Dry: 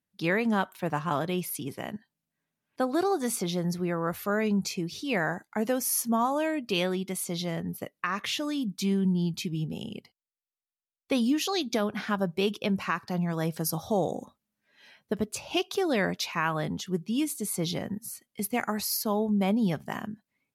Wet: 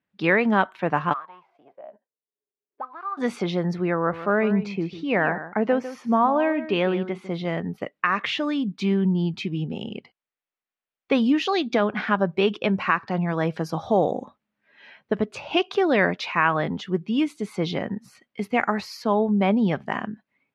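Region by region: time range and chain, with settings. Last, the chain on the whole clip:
1.12–3.17 s: formants flattened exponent 0.6 + auto-wah 400–1200 Hz, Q 13, up, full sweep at -23.5 dBFS
3.95–7.45 s: low-pass 2 kHz 6 dB/octave + delay 151 ms -13 dB
whole clip: Chebyshev low-pass 2.3 kHz, order 2; bass shelf 130 Hz -11 dB; trim +8.5 dB

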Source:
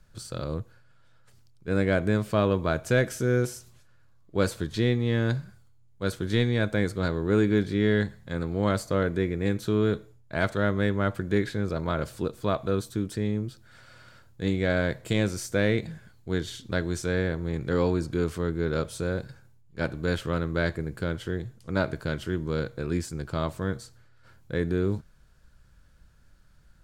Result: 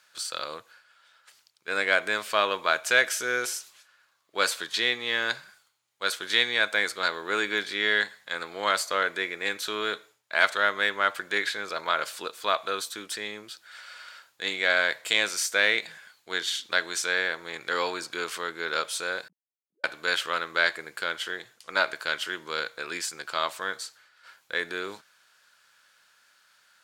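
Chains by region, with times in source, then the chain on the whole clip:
19.28–19.84 s: formants replaced by sine waves + inverse Chebyshev low-pass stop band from 1.1 kHz, stop band 70 dB + level held to a coarse grid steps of 16 dB
whole clip: high-pass 980 Hz 12 dB/octave; peaking EQ 3.1 kHz +4.5 dB 1.8 oct; trim +7 dB

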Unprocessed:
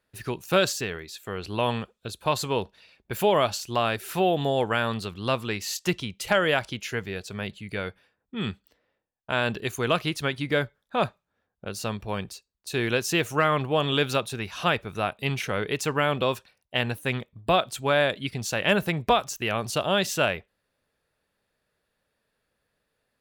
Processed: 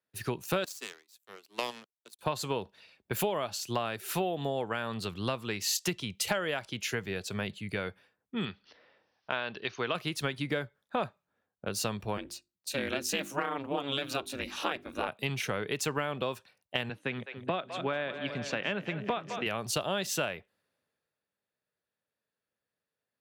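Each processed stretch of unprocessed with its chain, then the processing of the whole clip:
0.64–2.19 s: steep high-pass 210 Hz 72 dB/octave + power-law waveshaper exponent 2 + treble shelf 5.7 kHz +11 dB
8.45–9.95 s: steep low-pass 5.8 kHz 96 dB/octave + bass shelf 360 Hz -9.5 dB + upward compressor, threshold -41 dBFS
12.17–15.08 s: ring modulator 140 Hz + hum notches 50/100/150/200/250/300/350/400 Hz
16.89–19.46 s: band-pass 160–3100 Hz + peaking EQ 770 Hz -4.5 dB 1.8 oct + two-band feedback delay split 440 Hz, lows 285 ms, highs 208 ms, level -12 dB
whole clip: high-pass 100 Hz; compression 10:1, threshold -31 dBFS; three bands expanded up and down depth 40%; trim +2.5 dB

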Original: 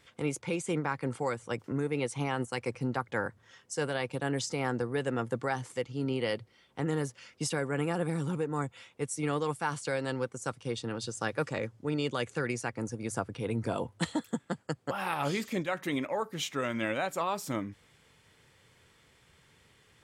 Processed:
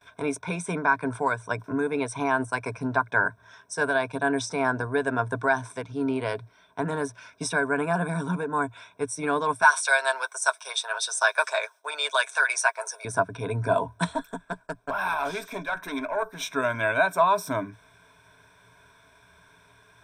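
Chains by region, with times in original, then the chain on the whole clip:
9.62–13.05 s: steep high-pass 560 Hz + treble shelf 2.6 kHz +11.5 dB + comb 7.5 ms, depth 49%
14.13–16.42 s: high-pass 270 Hz 6 dB/octave + valve stage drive 26 dB, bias 0.45
whole clip: rippled EQ curve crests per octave 1.6, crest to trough 15 dB; gate with hold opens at -53 dBFS; high-order bell 1 kHz +9 dB

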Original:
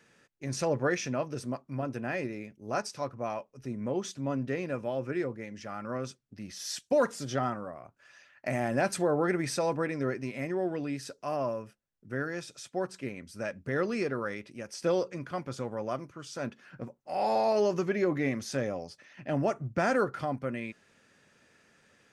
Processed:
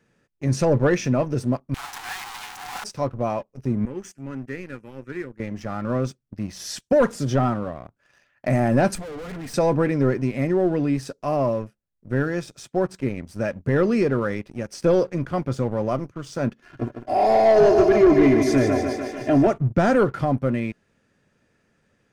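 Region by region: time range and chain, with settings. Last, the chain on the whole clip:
1.74–2.84 s: one-bit comparator + Chebyshev high-pass 730 Hz, order 10 + loudspeaker Doppler distortion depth 0.64 ms
3.85–5.40 s: high-pass 710 Hz 6 dB/octave + peaking EQ 1.1 kHz -9.5 dB 0.49 oct + static phaser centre 1.6 kHz, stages 4
8.95–9.54 s: comb 4.2 ms, depth 86% + valve stage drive 42 dB, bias 0.75
16.62–19.47 s: comb 2.9 ms, depth 90% + thinning echo 149 ms, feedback 72%, high-pass 160 Hz, level -6.5 dB
whole clip: treble shelf 8 kHz +8 dB; waveshaping leveller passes 2; tilt EQ -2.5 dB/octave

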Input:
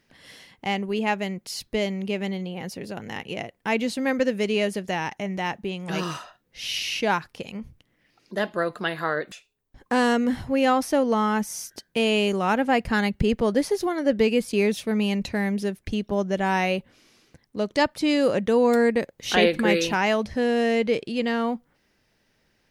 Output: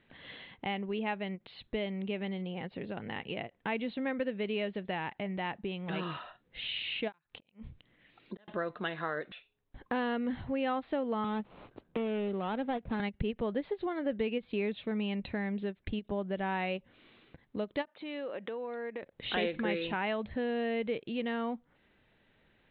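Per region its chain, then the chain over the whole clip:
7.12–8.48 s: inverted gate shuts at -23 dBFS, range -37 dB + treble shelf 3.9 kHz +9 dB
11.24–13.00 s: median filter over 25 samples + distance through air 99 m + three bands compressed up and down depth 40%
17.85–19.03 s: band-pass 360–3800 Hz + compression 3:1, threshold -35 dBFS
whole clip: compression 2:1, threshold -39 dBFS; steep low-pass 3.9 kHz 96 dB/octave; endings held to a fixed fall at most 530 dB/s

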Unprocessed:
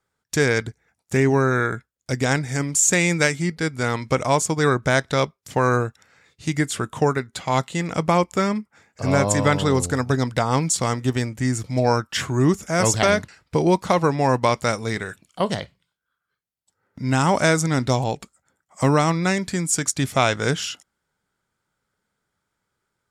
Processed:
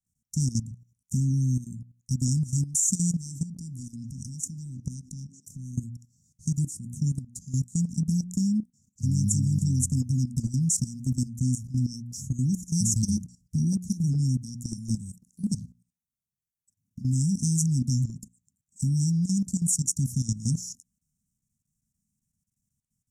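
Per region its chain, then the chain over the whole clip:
3.10–5.77 s: compression 4:1, threshold -24 dBFS + repeats whose band climbs or falls 156 ms, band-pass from 400 Hz, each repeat 0.7 oct, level -4 dB
whole clip: Chebyshev band-stop 240–5800 Hz, order 5; hum notches 60/120/180/240/300/360 Hz; level held to a coarse grid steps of 14 dB; trim +4.5 dB

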